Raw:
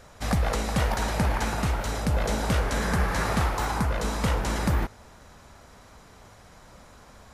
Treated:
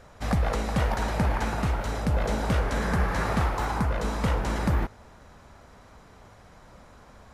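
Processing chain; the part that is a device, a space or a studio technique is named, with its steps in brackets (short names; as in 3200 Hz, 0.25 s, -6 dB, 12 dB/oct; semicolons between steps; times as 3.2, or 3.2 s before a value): behind a face mask (high shelf 3500 Hz -8 dB)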